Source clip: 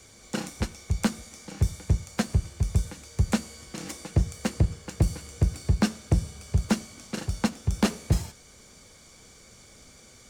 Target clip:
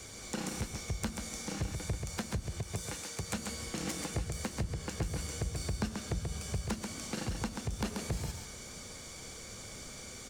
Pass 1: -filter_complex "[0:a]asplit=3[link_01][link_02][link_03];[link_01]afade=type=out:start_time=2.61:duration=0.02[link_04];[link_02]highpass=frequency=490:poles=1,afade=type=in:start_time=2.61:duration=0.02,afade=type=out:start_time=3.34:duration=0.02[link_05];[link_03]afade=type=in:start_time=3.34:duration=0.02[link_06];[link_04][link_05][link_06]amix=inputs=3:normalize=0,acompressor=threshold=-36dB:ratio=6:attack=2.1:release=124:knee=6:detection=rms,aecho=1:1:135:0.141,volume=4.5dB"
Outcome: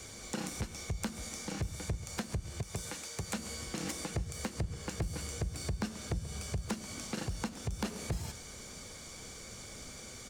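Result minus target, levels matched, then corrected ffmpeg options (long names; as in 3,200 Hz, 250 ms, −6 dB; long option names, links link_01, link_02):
echo-to-direct −12 dB
-filter_complex "[0:a]asplit=3[link_01][link_02][link_03];[link_01]afade=type=out:start_time=2.61:duration=0.02[link_04];[link_02]highpass=frequency=490:poles=1,afade=type=in:start_time=2.61:duration=0.02,afade=type=out:start_time=3.34:duration=0.02[link_05];[link_03]afade=type=in:start_time=3.34:duration=0.02[link_06];[link_04][link_05][link_06]amix=inputs=3:normalize=0,acompressor=threshold=-36dB:ratio=6:attack=2.1:release=124:knee=6:detection=rms,aecho=1:1:135:0.562,volume=4.5dB"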